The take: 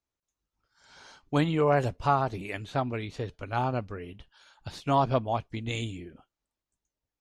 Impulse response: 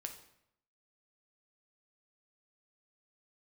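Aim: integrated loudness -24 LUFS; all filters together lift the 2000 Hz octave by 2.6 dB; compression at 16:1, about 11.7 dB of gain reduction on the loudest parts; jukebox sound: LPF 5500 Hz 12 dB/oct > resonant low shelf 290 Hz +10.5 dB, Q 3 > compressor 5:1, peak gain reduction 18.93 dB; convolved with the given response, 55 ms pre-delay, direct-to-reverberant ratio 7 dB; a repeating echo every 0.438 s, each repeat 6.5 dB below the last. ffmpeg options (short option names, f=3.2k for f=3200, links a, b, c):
-filter_complex "[0:a]equalizer=f=2k:t=o:g=4,acompressor=threshold=-30dB:ratio=16,aecho=1:1:438|876|1314|1752|2190|2628:0.473|0.222|0.105|0.0491|0.0231|0.0109,asplit=2[a][b];[1:a]atrim=start_sample=2205,adelay=55[c];[b][c]afir=irnorm=-1:irlink=0,volume=-4.5dB[d];[a][d]amix=inputs=2:normalize=0,lowpass=5.5k,lowshelf=f=290:t=q:w=3:g=10.5,acompressor=threshold=-40dB:ratio=5,volume=18.5dB"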